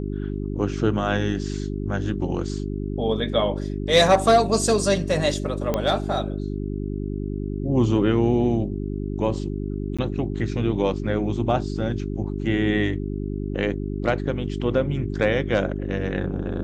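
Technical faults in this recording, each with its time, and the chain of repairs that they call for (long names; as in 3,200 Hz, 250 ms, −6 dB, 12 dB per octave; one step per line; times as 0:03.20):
mains hum 50 Hz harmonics 8 −28 dBFS
0:05.74: click −10 dBFS
0:09.97–0:09.99: drop-out 16 ms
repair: click removal
hum removal 50 Hz, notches 8
repair the gap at 0:09.97, 16 ms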